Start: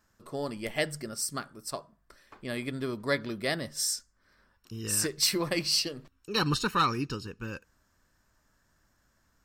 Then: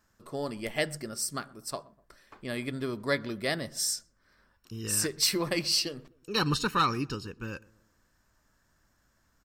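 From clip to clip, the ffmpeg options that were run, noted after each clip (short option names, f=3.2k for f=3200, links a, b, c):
-filter_complex "[0:a]asplit=2[a][b];[b]adelay=124,lowpass=f=930:p=1,volume=-21dB,asplit=2[c][d];[d]adelay=124,lowpass=f=930:p=1,volume=0.49,asplit=2[e][f];[f]adelay=124,lowpass=f=930:p=1,volume=0.49,asplit=2[g][h];[h]adelay=124,lowpass=f=930:p=1,volume=0.49[i];[a][c][e][g][i]amix=inputs=5:normalize=0"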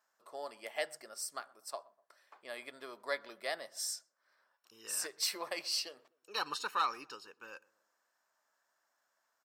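-af "highpass=f=690:t=q:w=1.7,volume=-8.5dB"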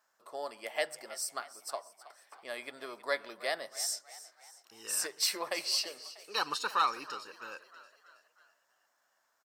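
-filter_complex "[0:a]asplit=6[a][b][c][d][e][f];[b]adelay=321,afreqshift=49,volume=-16.5dB[g];[c]adelay=642,afreqshift=98,volume=-22.2dB[h];[d]adelay=963,afreqshift=147,volume=-27.9dB[i];[e]adelay=1284,afreqshift=196,volume=-33.5dB[j];[f]adelay=1605,afreqshift=245,volume=-39.2dB[k];[a][g][h][i][j][k]amix=inputs=6:normalize=0,volume=4dB"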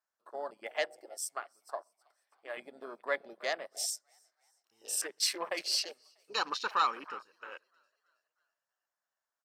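-af "afwtdn=0.00794"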